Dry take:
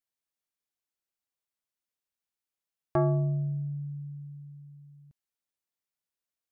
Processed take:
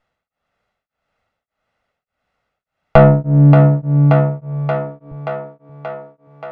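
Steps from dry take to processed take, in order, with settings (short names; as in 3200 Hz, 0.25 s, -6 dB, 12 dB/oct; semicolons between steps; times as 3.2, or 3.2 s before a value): minimum comb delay 1.5 ms; LPF 1700 Hz 12 dB/oct; in parallel at +0.5 dB: compressor, threshold -35 dBFS, peak gain reduction 12 dB; on the sum: soft clip -21.5 dBFS, distortion -15 dB; on a send: thinning echo 0.579 s, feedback 69%, high-pass 200 Hz, level -7 dB; on the sum: maximiser +24.5 dB; beating tremolo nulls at 1.7 Hz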